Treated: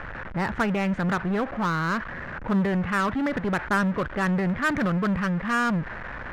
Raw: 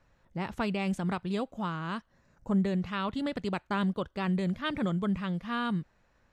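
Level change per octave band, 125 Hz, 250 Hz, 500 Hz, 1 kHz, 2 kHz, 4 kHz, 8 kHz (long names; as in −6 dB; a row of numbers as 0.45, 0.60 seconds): +5.5 dB, +5.5 dB, +6.5 dB, +8.5 dB, +12.0 dB, +1.5 dB, can't be measured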